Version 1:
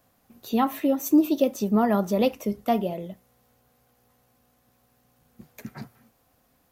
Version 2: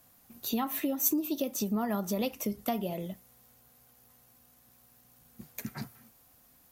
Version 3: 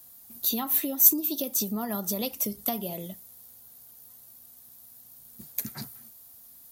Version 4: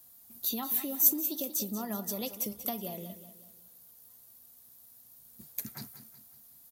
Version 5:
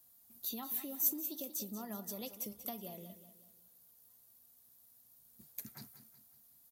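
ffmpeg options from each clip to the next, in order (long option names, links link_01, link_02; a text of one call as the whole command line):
ffmpeg -i in.wav -af "equalizer=frequency=510:width_type=o:width=1.2:gain=-3.5,acompressor=threshold=-28dB:ratio=5,aemphasis=mode=production:type=cd" out.wav
ffmpeg -i in.wav -af "aexciter=amount=2.3:drive=6.6:freq=3500,volume=-1dB" out.wav
ffmpeg -i in.wav -af "aecho=1:1:186|372|558|744:0.237|0.102|0.0438|0.0189,volume=-5.5dB" out.wav
ffmpeg -i in.wav -af "asoftclip=type=tanh:threshold=-9dB,volume=-8dB" out.wav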